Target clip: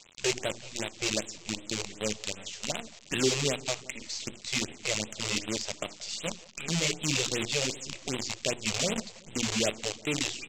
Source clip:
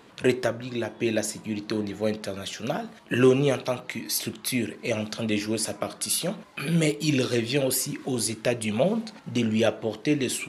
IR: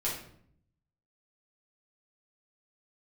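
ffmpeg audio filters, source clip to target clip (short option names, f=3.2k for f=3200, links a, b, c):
-filter_complex "[0:a]highpass=f=70:w=0.5412,highpass=f=70:w=1.3066,aemphasis=mode=reproduction:type=75fm,bandreject=f=60:t=h:w=6,bandreject=f=120:t=h:w=6,bandreject=f=180:t=h:w=6,bandreject=f=240:t=h:w=6,bandreject=f=300:t=h:w=6,bandreject=f=360:t=h:w=6,aresample=16000,acrusher=bits=5:dc=4:mix=0:aa=0.000001,aresample=44100,asoftclip=type=tanh:threshold=-9.5dB,aexciter=amount=2.9:drive=8:freq=2.2k,asplit=2[a][b];[b]adelay=178,lowpass=f=1.2k:p=1,volume=-20dB,asplit=2[c][d];[d]adelay=178,lowpass=f=1.2k:p=1,volume=0.53,asplit=2[e][f];[f]adelay=178,lowpass=f=1.2k:p=1,volume=0.53,asplit=2[g][h];[h]adelay=178,lowpass=f=1.2k:p=1,volume=0.53[i];[a][c][e][g][i]amix=inputs=5:normalize=0,afftfilt=real='re*(1-between(b*sr/1024,210*pow(5800/210,0.5+0.5*sin(2*PI*2.6*pts/sr))/1.41,210*pow(5800/210,0.5+0.5*sin(2*PI*2.6*pts/sr))*1.41))':imag='im*(1-between(b*sr/1024,210*pow(5800/210,0.5+0.5*sin(2*PI*2.6*pts/sr))/1.41,210*pow(5800/210,0.5+0.5*sin(2*PI*2.6*pts/sr))*1.41))':win_size=1024:overlap=0.75,volume=-7.5dB"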